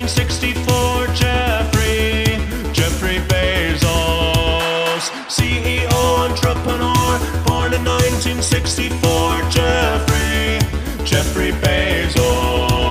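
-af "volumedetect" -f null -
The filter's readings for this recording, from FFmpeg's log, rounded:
mean_volume: -16.2 dB
max_volume: -3.6 dB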